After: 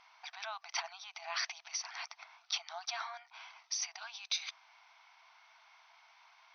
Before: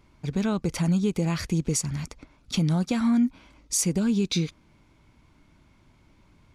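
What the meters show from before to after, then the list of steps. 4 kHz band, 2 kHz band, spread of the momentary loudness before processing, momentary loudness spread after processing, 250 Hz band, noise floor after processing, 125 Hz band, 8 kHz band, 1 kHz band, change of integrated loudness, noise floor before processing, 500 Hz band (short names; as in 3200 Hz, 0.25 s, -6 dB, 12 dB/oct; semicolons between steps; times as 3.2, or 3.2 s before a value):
-3.0 dB, -2.5 dB, 8 LU, 13 LU, under -40 dB, -69 dBFS, under -40 dB, -10.5 dB, -4.5 dB, -14.0 dB, -60 dBFS, -20.0 dB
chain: compressor, threshold -24 dBFS, peak gain reduction 6 dB; limiter -27 dBFS, peak gain reduction 10 dB; brick-wall FIR band-pass 650–6300 Hz; gain +5 dB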